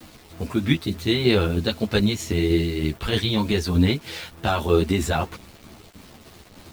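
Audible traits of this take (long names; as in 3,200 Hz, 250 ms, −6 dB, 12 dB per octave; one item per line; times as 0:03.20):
tremolo saw down 3.2 Hz, depth 40%
a quantiser's noise floor 8 bits, dither none
a shimmering, thickened sound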